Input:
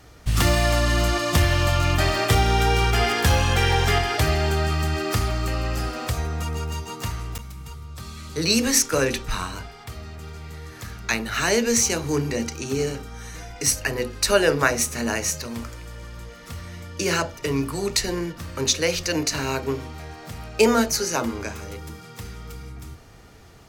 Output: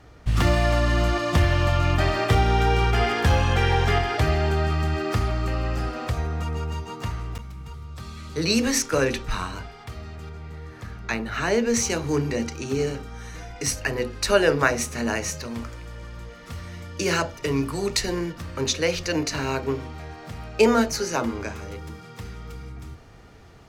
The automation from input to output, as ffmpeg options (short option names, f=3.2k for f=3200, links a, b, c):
-af "asetnsamples=n=441:p=0,asendcmd='7.74 lowpass f 3800;10.29 lowpass f 1600;11.74 lowpass f 3900;16.51 lowpass f 6400;18.42 lowpass f 3600',lowpass=f=2.3k:p=1"